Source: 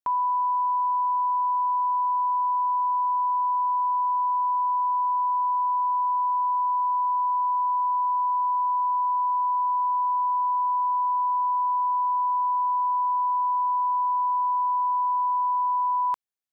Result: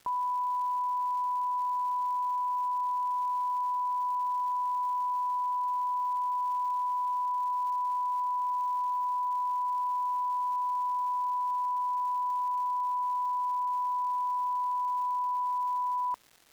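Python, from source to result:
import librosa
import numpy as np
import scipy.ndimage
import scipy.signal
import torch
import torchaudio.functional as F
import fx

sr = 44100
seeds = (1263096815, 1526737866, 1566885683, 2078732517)

y = scipy.signal.sosfilt(scipy.signal.bessel(2, 940.0, 'lowpass', norm='mag', fs=sr, output='sos'), x)
y = fx.dmg_crackle(y, sr, seeds[0], per_s=520.0, level_db=-43.0)
y = F.gain(torch.from_numpy(y), -3.0).numpy()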